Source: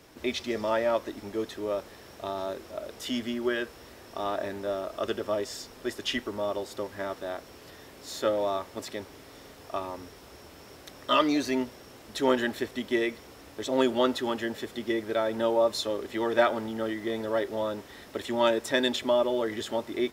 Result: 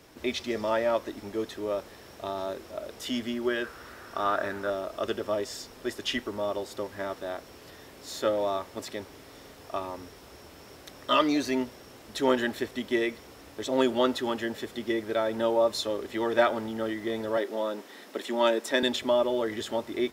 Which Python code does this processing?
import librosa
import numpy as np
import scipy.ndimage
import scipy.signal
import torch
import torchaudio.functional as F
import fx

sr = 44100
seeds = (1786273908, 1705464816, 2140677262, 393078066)

y = fx.peak_eq(x, sr, hz=1400.0, db=13.0, octaves=0.6, at=(3.64, 4.7))
y = fx.highpass(y, sr, hz=200.0, slope=24, at=(17.37, 18.83))